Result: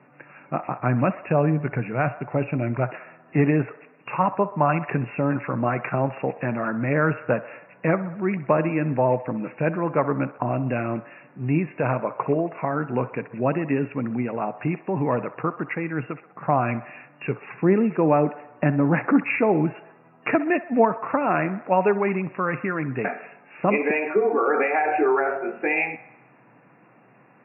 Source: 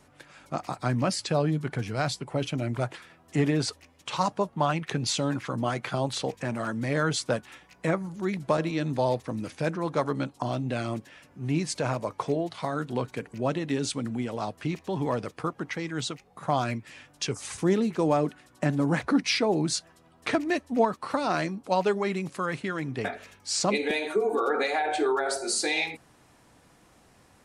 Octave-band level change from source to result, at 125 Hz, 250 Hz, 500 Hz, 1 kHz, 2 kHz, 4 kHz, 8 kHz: +5.0 dB, +5.0 dB, +5.0 dB, +5.5 dB, +5.0 dB, below −15 dB, below −40 dB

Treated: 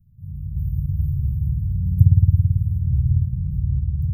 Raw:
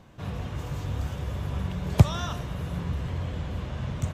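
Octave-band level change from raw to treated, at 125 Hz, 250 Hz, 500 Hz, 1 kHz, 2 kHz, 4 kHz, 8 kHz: +9.5 dB, +2.5 dB, below −30 dB, below −40 dB, below −40 dB, below −40 dB, below −20 dB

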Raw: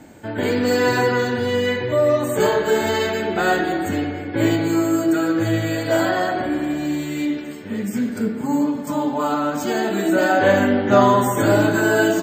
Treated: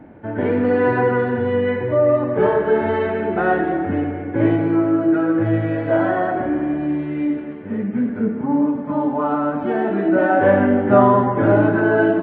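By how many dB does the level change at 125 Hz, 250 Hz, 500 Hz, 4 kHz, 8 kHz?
+2.0 dB, +2.0 dB, +1.5 dB, below −15 dB, below −40 dB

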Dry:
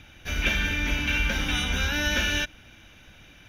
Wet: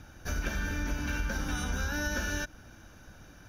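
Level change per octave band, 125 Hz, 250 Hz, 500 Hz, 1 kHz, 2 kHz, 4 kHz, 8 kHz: −4.5, −4.0, −4.5, −4.5, −9.0, −15.0, −4.0 decibels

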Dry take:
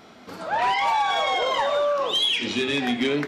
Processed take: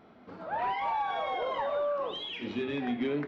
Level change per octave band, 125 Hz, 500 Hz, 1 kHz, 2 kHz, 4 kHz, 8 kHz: −6.0 dB, −7.5 dB, −8.5 dB, −13.0 dB, −17.5 dB, below −25 dB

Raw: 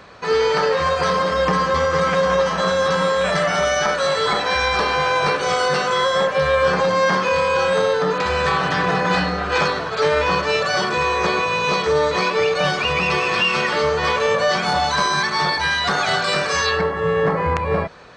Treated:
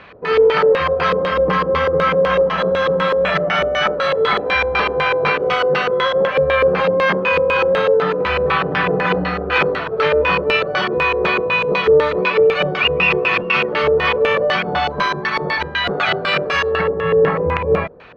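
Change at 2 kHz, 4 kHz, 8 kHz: +2.0 dB, −1.0 dB, below −15 dB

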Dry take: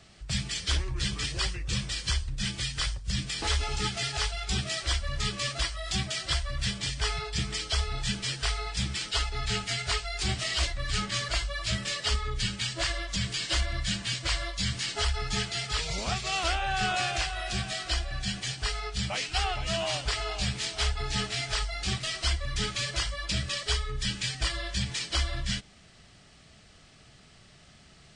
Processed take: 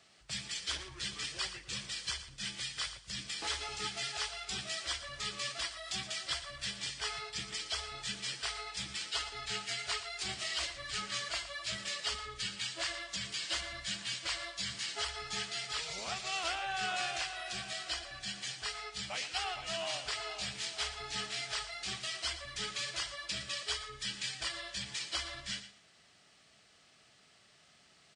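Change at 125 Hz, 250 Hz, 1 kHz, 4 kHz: −20.0, −14.0, −7.0, −6.0 decibels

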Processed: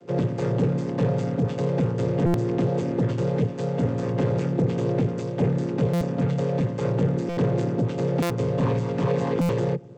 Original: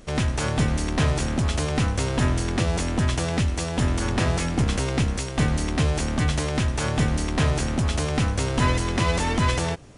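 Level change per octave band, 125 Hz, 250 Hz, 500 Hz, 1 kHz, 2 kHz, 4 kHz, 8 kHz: −0.5 dB, +1.5 dB, +4.5 dB, −5.0 dB, −10.5 dB, −13.5 dB, below −15 dB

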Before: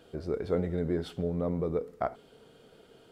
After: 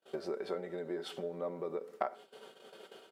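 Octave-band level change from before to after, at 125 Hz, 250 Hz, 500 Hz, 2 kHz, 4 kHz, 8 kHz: −19.0 dB, −11.0 dB, −6.0 dB, −2.0 dB, +1.0 dB, can't be measured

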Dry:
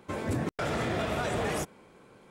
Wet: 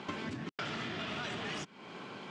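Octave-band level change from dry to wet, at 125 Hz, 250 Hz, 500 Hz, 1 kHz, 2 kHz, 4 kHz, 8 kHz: −11.0, −7.5, −12.0, −7.5, −4.0, 0.0, −10.0 decibels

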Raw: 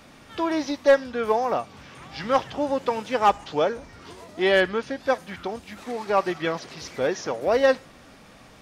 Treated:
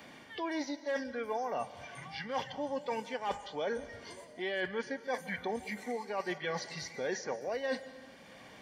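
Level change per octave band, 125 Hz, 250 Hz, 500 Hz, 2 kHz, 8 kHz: −10.0, −11.0, −13.5, −10.0, −6.5 decibels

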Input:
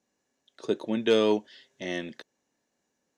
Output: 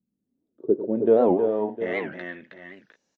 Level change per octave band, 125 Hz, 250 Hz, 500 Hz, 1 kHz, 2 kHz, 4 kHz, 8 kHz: +3.5 dB, +4.0 dB, +6.0 dB, +7.0 dB, +3.0 dB, below −15 dB, below −20 dB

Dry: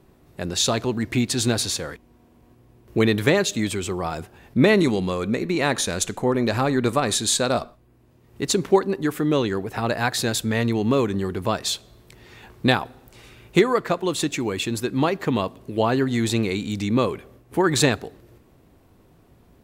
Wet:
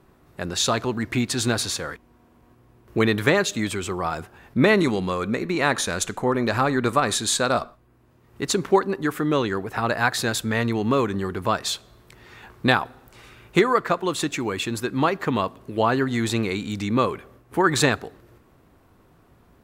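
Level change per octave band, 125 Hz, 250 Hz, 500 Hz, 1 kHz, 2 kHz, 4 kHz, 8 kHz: −2.0, −1.5, −1.0, +2.5, +2.5, −1.5, −2.0 decibels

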